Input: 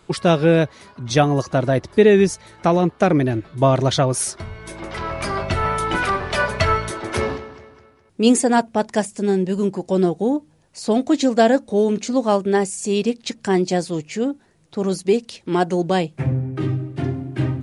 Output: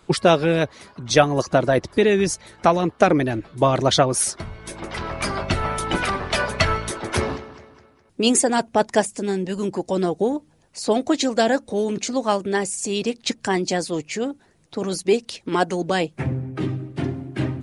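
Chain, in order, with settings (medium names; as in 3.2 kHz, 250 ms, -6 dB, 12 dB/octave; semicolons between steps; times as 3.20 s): harmonic-percussive split percussive +9 dB; trim -5.5 dB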